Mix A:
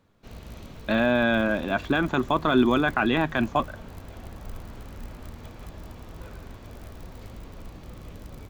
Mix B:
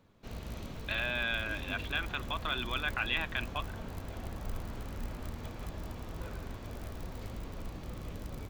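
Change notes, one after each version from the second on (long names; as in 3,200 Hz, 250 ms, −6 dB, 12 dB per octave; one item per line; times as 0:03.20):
speech: add resonant band-pass 2,800 Hz, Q 1.9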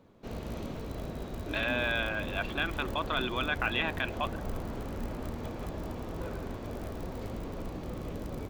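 speech: entry +0.65 s
master: add parametric band 400 Hz +8.5 dB 2.8 octaves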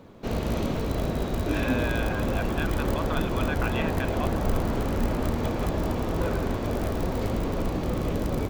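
speech: add high-frequency loss of the air 270 metres
background +11.0 dB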